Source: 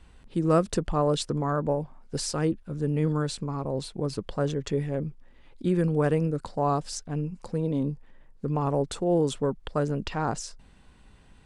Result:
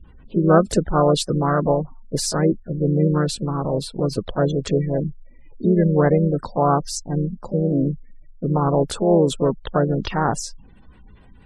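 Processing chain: spectral gate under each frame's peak -25 dB strong; harmoniser +3 st -8 dB; gain +7 dB

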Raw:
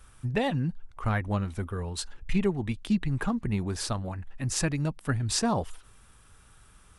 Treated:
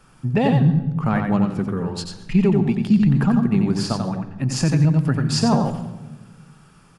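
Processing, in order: resonant low shelf 110 Hz -10.5 dB, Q 3; echo 90 ms -5 dB; reverb RT60 1.2 s, pre-delay 0.107 s, DRR 14 dB; maximiser +4.5 dB; 1.6–2.35 Doppler distortion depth 0.12 ms; gain -7 dB

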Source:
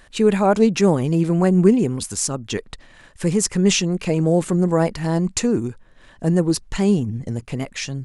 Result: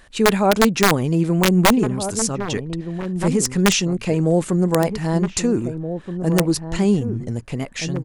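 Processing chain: wrapped overs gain 6.5 dB; outdoor echo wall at 270 m, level -9 dB

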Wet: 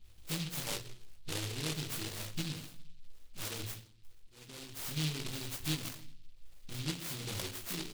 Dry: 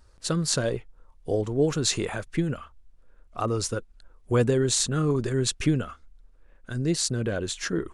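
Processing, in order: 5.28–5.86 band shelf 1400 Hz +9 dB 2.3 oct; compressor 2.5:1, threshold -40 dBFS, peak gain reduction 15 dB; 3.63–4.78 auto swell 0.641 s; doubler 19 ms -3 dB; dispersion highs, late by 51 ms, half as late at 1100 Hz; reverb RT60 0.50 s, pre-delay 6 ms, DRR 2 dB; noise-modulated delay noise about 3400 Hz, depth 0.43 ms; gain -6.5 dB

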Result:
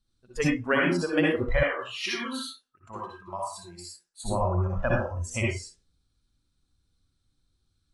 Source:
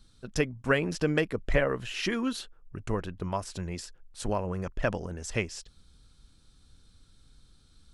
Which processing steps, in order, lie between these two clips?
reverb RT60 0.50 s, pre-delay 52 ms, DRR -3.5 dB; spectral noise reduction 19 dB; 1.63–4.23 HPF 1100 Hz 6 dB/oct

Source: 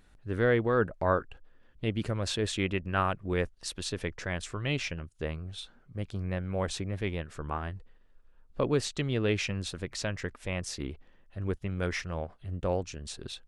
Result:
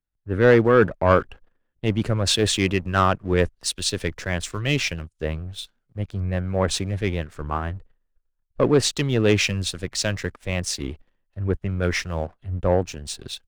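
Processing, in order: sample leveller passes 2; three-band expander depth 70%; gain +2 dB

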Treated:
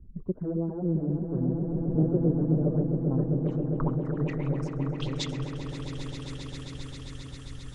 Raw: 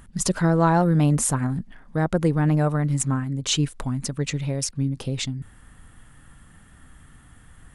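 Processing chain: phaser stages 6, 3.6 Hz, lowest notch 180–2600 Hz; compressor 4:1, threshold -37 dBFS, peak gain reduction 18.5 dB; low-pass sweep 390 Hz -> 5900 Hz, 2.44–5.84; swelling echo 0.133 s, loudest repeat 8, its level -9 dB; three-band expander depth 70%; gain +5 dB

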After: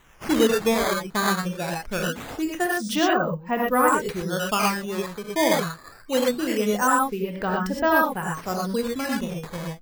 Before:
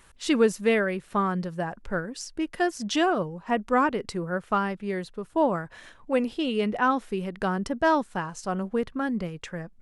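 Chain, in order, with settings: reverb removal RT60 0.92 s; non-linear reverb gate 0.14 s rising, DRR -2 dB; decimation with a swept rate 9×, swing 160% 0.23 Hz

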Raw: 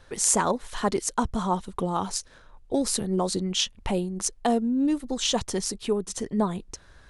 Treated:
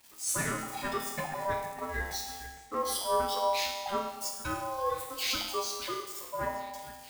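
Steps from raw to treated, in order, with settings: switching spikes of -19.5 dBFS; spectral noise reduction 16 dB; 4.08–5.45 tilt shelf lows -5 dB, about 1400 Hz; sample leveller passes 3; resonator 95 Hz, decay 0.82 s, harmonics all, mix 90%; delay with a stepping band-pass 0.461 s, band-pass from 800 Hz, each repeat 0.7 oct, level -11 dB; Schroeder reverb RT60 1.4 s, combs from 33 ms, DRR 7.5 dB; ring modulator 790 Hz; mismatched tape noise reduction decoder only

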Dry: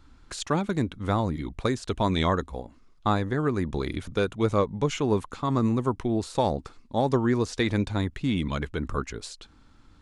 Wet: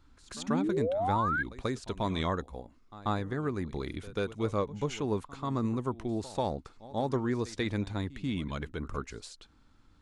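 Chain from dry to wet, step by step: painted sound rise, 0.48–1.43, 210–1700 Hz -23 dBFS; pre-echo 0.138 s -17.5 dB; gain -7 dB

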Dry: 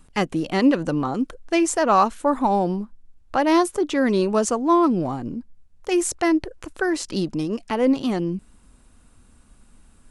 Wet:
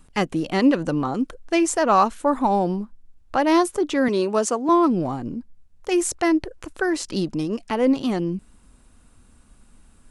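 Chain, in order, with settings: 4.08–4.69 HPF 240 Hz

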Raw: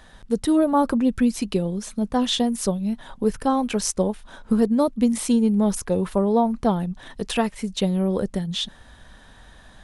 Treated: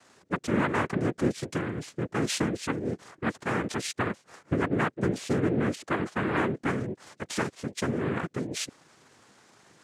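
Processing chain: soft clip -10.5 dBFS, distortion -22 dB; noise vocoder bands 3; gain -6.5 dB

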